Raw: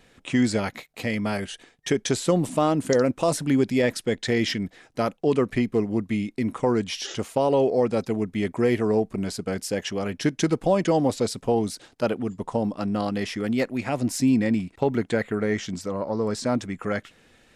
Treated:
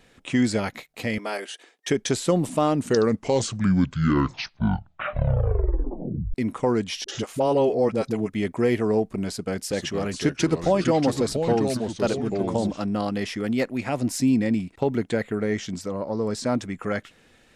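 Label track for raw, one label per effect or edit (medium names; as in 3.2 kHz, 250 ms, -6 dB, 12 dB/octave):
1.180000	1.880000	high-pass 330 Hz 24 dB/octave
2.600000	2.600000	tape stop 3.74 s
7.040000	8.300000	phase dispersion highs, late by 44 ms, half as late at 400 Hz
9.280000	12.850000	ever faster or slower copies 425 ms, each echo -3 st, echoes 2, each echo -6 dB
14.160000	16.410000	dynamic bell 1.3 kHz, up to -3 dB, over -36 dBFS, Q 0.78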